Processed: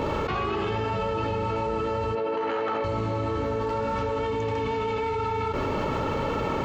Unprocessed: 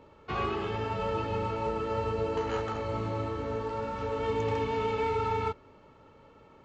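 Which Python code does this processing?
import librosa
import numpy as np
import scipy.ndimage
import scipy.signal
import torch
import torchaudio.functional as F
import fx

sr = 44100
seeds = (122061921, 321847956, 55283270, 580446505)

y = fx.bandpass_edges(x, sr, low_hz=300.0, high_hz=3200.0, at=(2.15, 2.84))
y = fx.dmg_crackle(y, sr, seeds[0], per_s=fx.line((3.44, 210.0), (4.1, 68.0)), level_db=-56.0, at=(3.44, 4.1), fade=0.02)
y = fx.env_flatten(y, sr, amount_pct=100)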